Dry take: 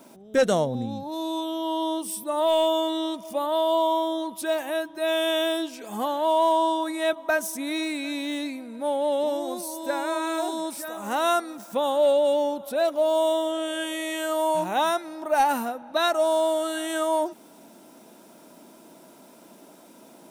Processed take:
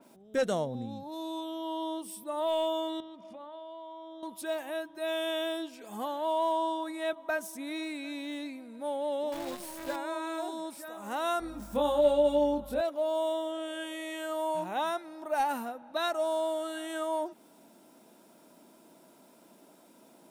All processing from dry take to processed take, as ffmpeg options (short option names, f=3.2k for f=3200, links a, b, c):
-filter_complex "[0:a]asettb=1/sr,asplit=3[a][b][c];[a]atrim=end=3.004[d];[b]atrim=start=3:end=4.23,asetpts=PTS-STARTPTS,afade=t=in:d=0.004:c=qsin,afade=t=out:st=1.226:d=0.004:c=qsin,lowpass=3.5k,acompressor=threshold=-36dB:ratio=4:attack=3.2:release=140:knee=1:detection=peak,bandreject=f=51.36:t=h:w=4,bandreject=f=102.72:t=h:w=4,bandreject=f=154.08:t=h:w=4,bandreject=f=205.44:t=h:w=4,bandreject=f=256.8:t=h:w=4,bandreject=f=308.16:t=h:w=4,bandreject=f=359.52:t=h:w=4,bandreject=f=410.88:t=h:w=4,bandreject=f=462.24:t=h:w=4,bandreject=f=513.6:t=h:w=4,bandreject=f=564.96:t=h:w=4,bandreject=f=616.32:t=h:w=4,bandreject=f=667.68:t=h:w=4,bandreject=f=719.04:t=h:w=4,bandreject=f=770.4:t=h:w=4,bandreject=f=821.76:t=h:w=4,bandreject=f=873.12:t=h:w=4[e];[c]atrim=start=4.226[f];[d][e]acrossfade=d=0.004:c1=hsin:c2=qsin[g];[g][f]acrossfade=d=0.004:c1=qsin:c2=hsin,asettb=1/sr,asplit=3[h][i][j];[h]atrim=end=9.324[k];[i]atrim=start=9.32:end=9.96,asetpts=PTS-STARTPTS,afade=t=in:d=0.004:c=qsin,afade=t=out:st=0.636:d=0.004:c=qsin,highpass=f=77:p=1,asplit=2[l][m];[m]adelay=15,volume=-6.5dB[n];[l][n]amix=inputs=2:normalize=0,atrim=end_sample=28224,acrusher=bits=6:dc=4:mix=0:aa=0.000001[o];[j]atrim=start=9.956[p];[k][o]acrossfade=d=0.004:c1=hsin:c2=qsin[q];[q][p]acrossfade=d=0.004:c1=qsin:c2=hsin,asettb=1/sr,asplit=3[r][s][t];[r]atrim=end=11.404[u];[s]atrim=start=11.4:end=12.81,asetpts=PTS-STARTPTS,afade=t=in:d=0.004:c=qsin,afade=t=out:st=1.406:d=0.004:c=qsin,lowshelf=f=260:g=11,aeval=exprs='val(0)+0.00794*(sin(2*PI*50*n/s)+sin(2*PI*2*50*n/s)/2+sin(2*PI*3*50*n/s)/3+sin(2*PI*4*50*n/s)/4+sin(2*PI*5*50*n/s)/5)':c=same,asplit=2[v][w];[w]adelay=24,volume=-2dB[x];[v][x]amix=inputs=2:normalize=0,atrim=end_sample=62181[y];[t]atrim=start=12.806[z];[u][y]acrossfade=d=0.004:c1=hsin:c2=qsin[aa];[aa][z]acrossfade=d=0.004:c1=qsin:c2=hsin,bandreject=f=6k:w=25,adynamicequalizer=threshold=0.00708:dfrequency=3900:dqfactor=0.7:tfrequency=3900:tqfactor=0.7:attack=5:release=100:ratio=0.375:range=2:mode=cutabove:tftype=highshelf,volume=-8dB"